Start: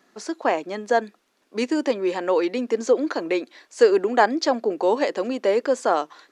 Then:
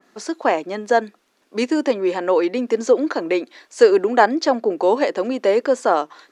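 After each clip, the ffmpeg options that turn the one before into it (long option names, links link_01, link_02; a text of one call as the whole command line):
ffmpeg -i in.wav -af "adynamicequalizer=threshold=0.0158:dfrequency=2400:dqfactor=0.7:tfrequency=2400:tqfactor=0.7:attack=5:release=100:ratio=0.375:range=2.5:mode=cutabove:tftype=highshelf,volume=3.5dB" out.wav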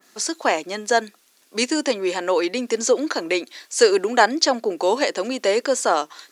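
ffmpeg -i in.wav -af "crystalizer=i=6:c=0,volume=-4dB" out.wav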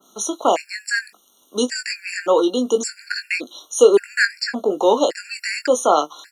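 ffmpeg -i in.wav -filter_complex "[0:a]asplit=2[link_01][link_02];[link_02]adelay=20,volume=-8dB[link_03];[link_01][link_03]amix=inputs=2:normalize=0,acrossover=split=500|2200[link_04][link_05][link_06];[link_06]alimiter=limit=-14dB:level=0:latency=1:release=191[link_07];[link_04][link_05][link_07]amix=inputs=3:normalize=0,afftfilt=real='re*gt(sin(2*PI*0.88*pts/sr)*(1-2*mod(floor(b*sr/1024/1400),2)),0)':imag='im*gt(sin(2*PI*0.88*pts/sr)*(1-2*mod(floor(b*sr/1024/1400),2)),0)':win_size=1024:overlap=0.75,volume=3.5dB" out.wav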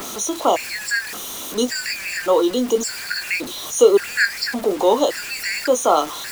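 ffmpeg -i in.wav -af "aeval=exprs='val(0)+0.5*0.0355*sgn(val(0))':channel_layout=same,acrusher=bits=5:mix=0:aa=0.000001,volume=-1dB" out.wav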